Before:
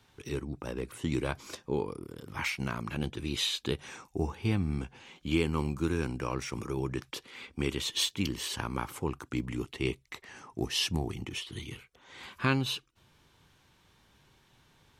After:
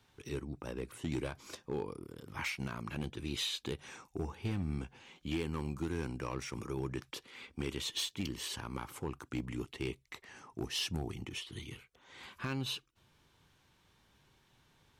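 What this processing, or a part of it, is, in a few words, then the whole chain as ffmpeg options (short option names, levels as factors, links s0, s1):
limiter into clipper: -af "alimiter=limit=0.106:level=0:latency=1:release=177,asoftclip=type=hard:threshold=0.0631,volume=0.596"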